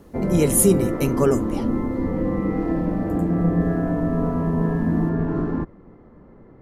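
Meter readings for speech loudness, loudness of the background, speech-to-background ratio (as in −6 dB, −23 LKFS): −20.0 LKFS, −23.0 LKFS, 3.0 dB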